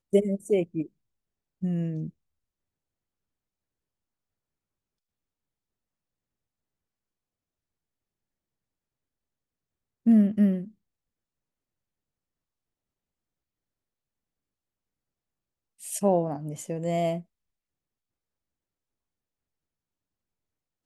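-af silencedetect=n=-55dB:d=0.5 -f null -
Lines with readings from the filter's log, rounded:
silence_start: 0.89
silence_end: 1.61 | silence_duration: 0.73
silence_start: 2.10
silence_end: 10.06 | silence_duration: 7.96
silence_start: 10.72
silence_end: 15.79 | silence_duration: 5.07
silence_start: 17.23
silence_end: 20.86 | silence_duration: 3.62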